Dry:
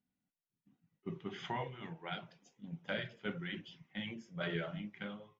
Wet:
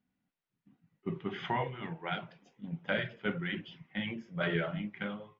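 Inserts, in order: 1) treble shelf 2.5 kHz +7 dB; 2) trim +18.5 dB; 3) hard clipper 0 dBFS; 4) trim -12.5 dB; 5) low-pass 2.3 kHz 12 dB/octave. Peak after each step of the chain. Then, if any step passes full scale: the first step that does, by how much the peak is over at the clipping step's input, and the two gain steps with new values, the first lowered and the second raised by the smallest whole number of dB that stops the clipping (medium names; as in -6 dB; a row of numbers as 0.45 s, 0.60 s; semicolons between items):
-23.0 dBFS, -4.5 dBFS, -4.5 dBFS, -17.0 dBFS, -18.5 dBFS; nothing clips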